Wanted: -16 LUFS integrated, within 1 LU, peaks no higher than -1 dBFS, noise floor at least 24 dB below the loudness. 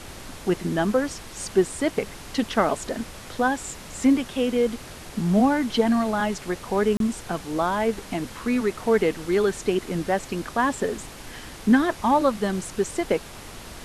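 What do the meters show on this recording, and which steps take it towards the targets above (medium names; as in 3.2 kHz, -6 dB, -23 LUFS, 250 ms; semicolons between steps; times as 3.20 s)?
dropouts 1; longest dropout 32 ms; noise floor -41 dBFS; noise floor target -49 dBFS; loudness -24.5 LUFS; peak level -7.5 dBFS; loudness target -16.0 LUFS
-> interpolate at 6.97 s, 32 ms; noise print and reduce 8 dB; trim +8.5 dB; peak limiter -1 dBFS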